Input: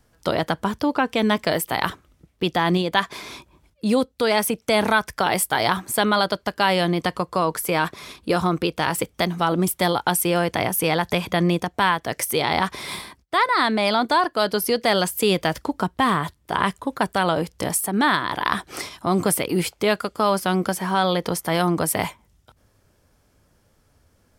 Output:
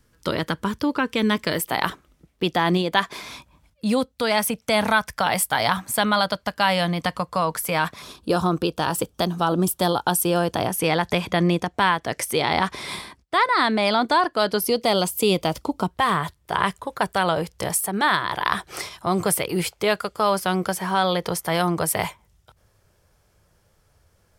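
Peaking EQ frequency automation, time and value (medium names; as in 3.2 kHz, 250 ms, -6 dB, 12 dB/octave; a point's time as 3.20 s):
peaking EQ -13.5 dB 0.39 oct
720 Hz
from 1.59 s 90 Hz
from 3.21 s 370 Hz
from 8.02 s 2.1 kHz
from 10.68 s 15 kHz
from 14.60 s 1.7 kHz
from 15.91 s 260 Hz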